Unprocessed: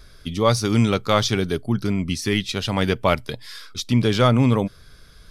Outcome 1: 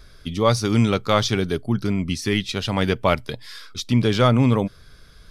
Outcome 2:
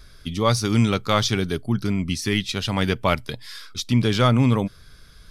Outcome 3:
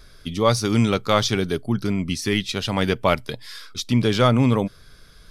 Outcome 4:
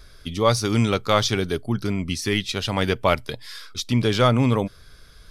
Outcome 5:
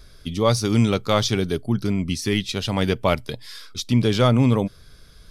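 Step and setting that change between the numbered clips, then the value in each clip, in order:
parametric band, centre frequency: 16,000, 520, 66, 180, 1,500 Hertz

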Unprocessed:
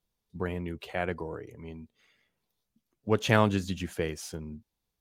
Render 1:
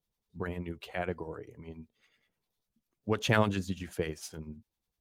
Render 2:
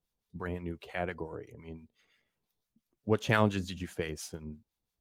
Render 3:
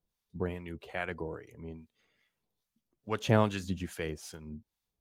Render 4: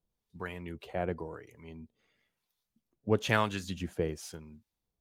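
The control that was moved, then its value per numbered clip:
two-band tremolo in antiphase, speed: 10, 5.8, 2.4, 1 Hertz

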